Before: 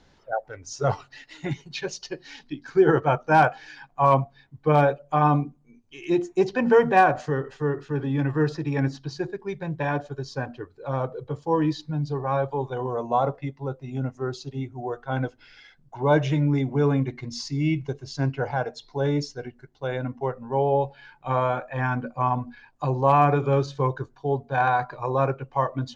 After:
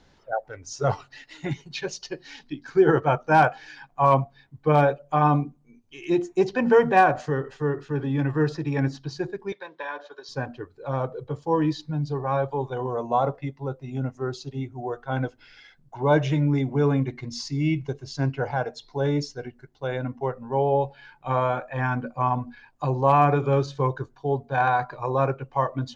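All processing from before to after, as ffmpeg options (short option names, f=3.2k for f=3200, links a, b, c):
-filter_complex "[0:a]asettb=1/sr,asplit=3[a][b][c];[a]atrim=end=9.524[d];[b]atrim=start=9.52:end=10.29,asetpts=PTS-STARTPTS,afade=t=in:d=0.004:c=qsin,afade=t=out:st=0.766:d=0.004:c=qsin,acompressor=threshold=-30dB:ratio=2.5:attack=3.2:release=140:knee=1:detection=peak,highpass=f=390:w=0.5412,highpass=f=390:w=1.3066,equalizer=f=390:t=q:w=4:g=-4,equalizer=f=730:t=q:w=4:g=-7,equalizer=f=1k:t=q:w=4:g=6,equalizer=f=1.6k:t=q:w=4:g=4,equalizer=f=3.7k:t=q:w=4:g=7,lowpass=f=5.8k:w=0.5412,lowpass=f=5.8k:w=1.3066[e];[c]atrim=start=10.286[f];[d][e]acrossfade=d=0.004:c1=hsin:c2=qsin[g];[g][f]acrossfade=d=0.004:c1=qsin:c2=hsin"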